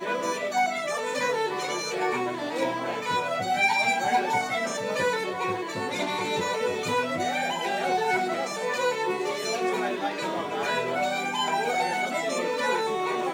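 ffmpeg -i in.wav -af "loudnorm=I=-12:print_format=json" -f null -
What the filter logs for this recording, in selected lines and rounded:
"input_i" : "-26.8",
"input_tp" : "-11.7",
"input_lra" : "1.7",
"input_thresh" : "-36.8",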